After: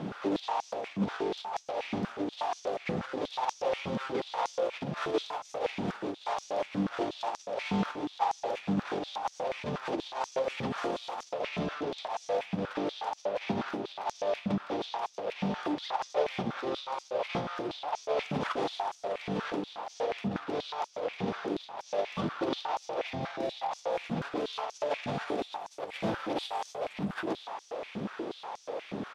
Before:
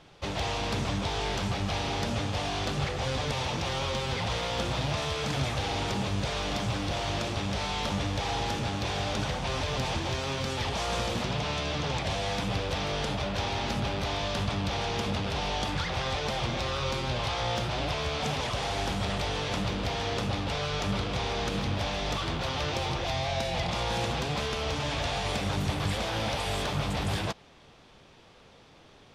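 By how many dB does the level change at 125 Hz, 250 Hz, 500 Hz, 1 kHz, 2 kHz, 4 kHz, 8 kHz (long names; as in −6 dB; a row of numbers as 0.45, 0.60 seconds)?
−11.0, −0.5, +0.5, −1.5, −7.0, −10.5, −11.5 decibels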